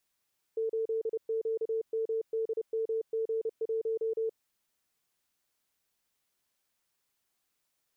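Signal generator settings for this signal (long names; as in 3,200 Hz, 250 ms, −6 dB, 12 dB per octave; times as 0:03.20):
Morse code "8QMDMG1" 30 words per minute 447 Hz −28 dBFS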